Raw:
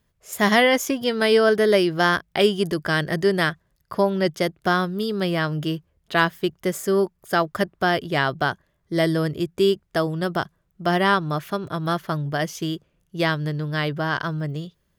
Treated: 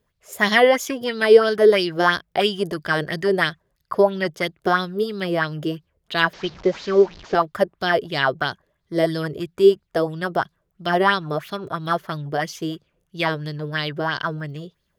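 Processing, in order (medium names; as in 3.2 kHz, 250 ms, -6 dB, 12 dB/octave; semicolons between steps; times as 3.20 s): 6.33–7.35 s: one-bit delta coder 32 kbps, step -33.5 dBFS; sweeping bell 3 Hz 400–4500 Hz +13 dB; trim -4 dB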